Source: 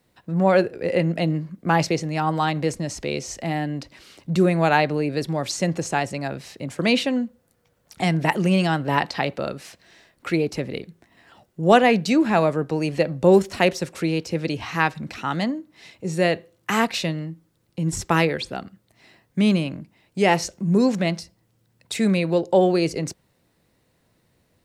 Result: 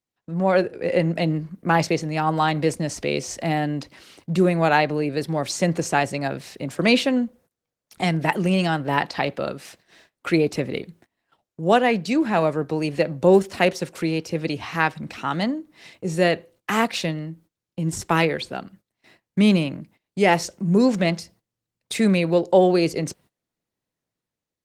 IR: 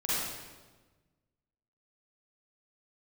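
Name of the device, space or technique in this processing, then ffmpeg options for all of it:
video call: -af "highpass=frequency=110:poles=1,dynaudnorm=framelen=140:gausssize=9:maxgain=6.5dB,agate=range=-22dB:threshold=-47dB:ratio=16:detection=peak,volume=-2.5dB" -ar 48000 -c:a libopus -b:a 20k

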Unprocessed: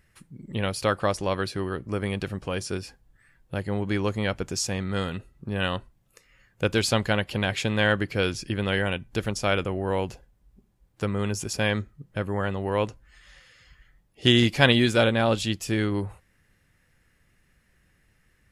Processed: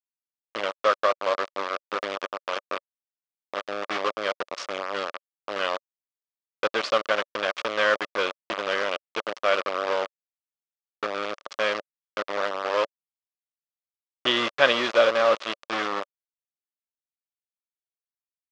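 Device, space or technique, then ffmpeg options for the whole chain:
hand-held game console: -af "acrusher=bits=3:mix=0:aa=0.000001,highpass=470,equalizer=frequency=570:width_type=q:width=4:gain=8,equalizer=frequency=820:width_type=q:width=4:gain=-3,equalizer=frequency=1200:width_type=q:width=4:gain=9,equalizer=frequency=4100:width_type=q:width=4:gain=-3,lowpass=frequency=4800:width=0.5412,lowpass=frequency=4800:width=1.3066,volume=-1.5dB"

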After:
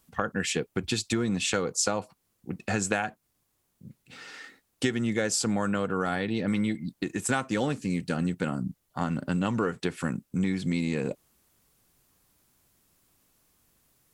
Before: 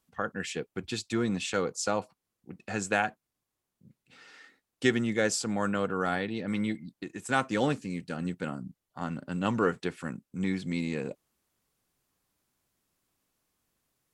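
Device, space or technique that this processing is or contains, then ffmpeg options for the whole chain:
ASMR close-microphone chain: -af "lowshelf=frequency=160:gain=5,acompressor=threshold=-32dB:ratio=6,highshelf=frequency=8000:gain=6,volume=8dB"

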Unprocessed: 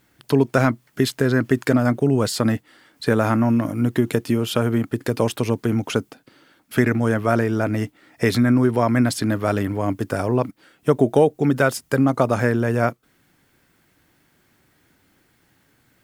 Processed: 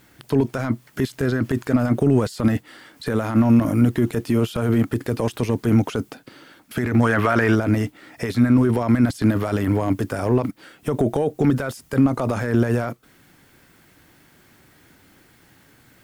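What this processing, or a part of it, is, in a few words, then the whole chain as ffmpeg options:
de-esser from a sidechain: -filter_complex "[0:a]asplit=2[link_01][link_02];[link_02]highpass=frequency=7000:poles=1,apad=whole_len=707160[link_03];[link_01][link_03]sidechaincompress=threshold=-45dB:ratio=16:attack=1.4:release=25,asplit=3[link_04][link_05][link_06];[link_04]afade=type=out:start_time=7.02:duration=0.02[link_07];[link_05]equalizer=frequency=1700:width_type=o:width=2.4:gain=11,afade=type=in:start_time=7.02:duration=0.02,afade=type=out:start_time=7.54:duration=0.02[link_08];[link_06]afade=type=in:start_time=7.54:duration=0.02[link_09];[link_07][link_08][link_09]amix=inputs=3:normalize=0,volume=7.5dB"

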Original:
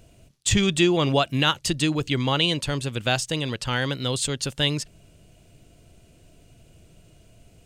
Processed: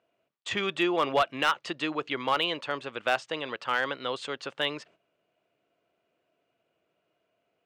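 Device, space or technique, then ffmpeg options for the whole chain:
walkie-talkie: -af "highpass=500,lowpass=2200,equalizer=frequency=1200:width=3.4:gain=4.5,asoftclip=type=hard:threshold=-16.5dB,agate=range=-12dB:threshold=-55dB:ratio=16:detection=peak"

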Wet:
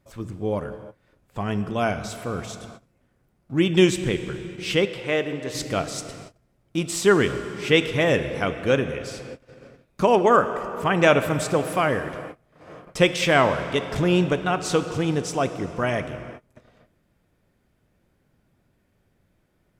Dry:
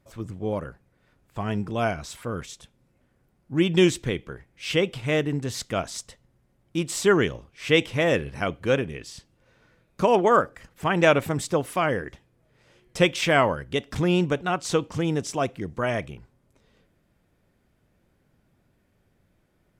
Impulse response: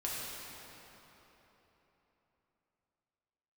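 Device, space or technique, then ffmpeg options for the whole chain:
keyed gated reverb: -filter_complex "[0:a]asplit=3[link_01][link_02][link_03];[1:a]atrim=start_sample=2205[link_04];[link_02][link_04]afir=irnorm=-1:irlink=0[link_05];[link_03]apad=whole_len=873132[link_06];[link_05][link_06]sidechaingate=range=-33dB:threshold=-59dB:ratio=16:detection=peak,volume=-10.5dB[link_07];[link_01][link_07]amix=inputs=2:normalize=0,asettb=1/sr,asplit=3[link_08][link_09][link_10];[link_08]atrim=end=4.854[link_11];[link_09]atrim=start=4.85:end=5.55,asetpts=PTS-STARTPTS,afade=type=in:duration=0.004:curve=qsin,afade=type=out:start_time=0.696:duration=0.004:curve=qsin,bass=frequency=250:gain=-11,treble=frequency=4000:gain=-6[link_12];[link_10]atrim=start=5.546[link_13];[link_11][link_12]acrossfade=duration=0.004:curve1=hsin:curve2=qsin[link_14];[link_14][link_13]acrossfade=duration=0.004:curve1=qsin:curve2=hsin"

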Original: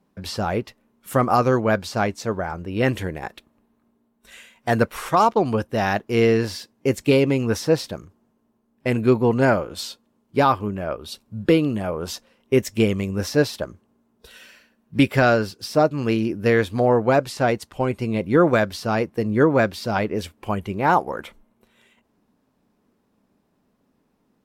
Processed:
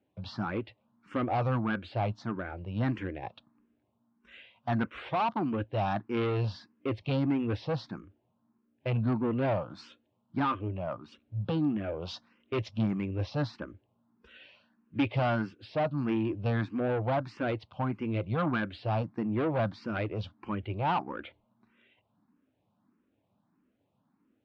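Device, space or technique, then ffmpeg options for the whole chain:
barber-pole phaser into a guitar amplifier: -filter_complex "[0:a]asettb=1/sr,asplit=3[link_01][link_02][link_03];[link_01]atrim=end=12.024[link_04];[link_02]atrim=start=12.02:end=12.71,asetpts=PTS-STARTPTS,afade=type=in:duration=0.004:curve=qsin,afade=type=out:start_time=0.686:duration=0.004:curve=qsin,highshelf=frequency=2500:gain=8.5[link_05];[link_03]atrim=start=12.706[link_06];[link_04][link_05]acrossfade=duration=0.004:curve1=hsin:curve2=qsin[link_07];[link_07][link_06]acrossfade=duration=0.004:curve1=qsin:curve2=hsin,asplit=2[link_08][link_09];[link_09]afreqshift=1.6[link_10];[link_08][link_10]amix=inputs=2:normalize=1,asoftclip=type=tanh:threshold=-19.5dB,highpass=78,equalizer=frequency=110:width_type=q:width=4:gain=7,equalizer=frequency=300:width_type=q:width=4:gain=4,equalizer=frequency=430:width_type=q:width=4:gain=-7,equalizer=frequency=1900:width_type=q:width=4:gain=-4,lowpass=frequency=3600:width=0.5412,lowpass=frequency=3600:width=1.3066,volume=-4dB"

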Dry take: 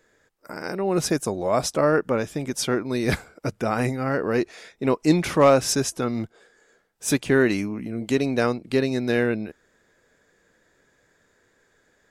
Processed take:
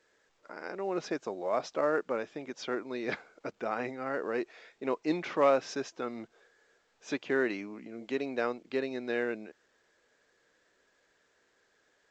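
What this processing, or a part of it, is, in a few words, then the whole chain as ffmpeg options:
telephone: -af "highpass=330,lowpass=3400,volume=-8dB" -ar 16000 -c:a pcm_alaw

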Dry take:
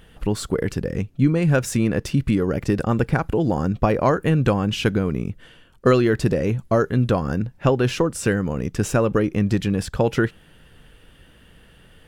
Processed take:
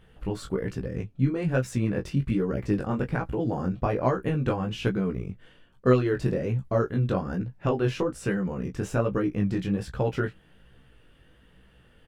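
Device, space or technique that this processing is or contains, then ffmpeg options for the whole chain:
double-tracked vocal: -filter_complex "[0:a]asplit=2[link_01][link_02];[link_02]adelay=16,volume=-9.5dB[link_03];[link_01][link_03]amix=inputs=2:normalize=0,flanger=delay=15:depth=7.4:speed=1.2,highshelf=frequency=3900:gain=-8,volume=-4dB"

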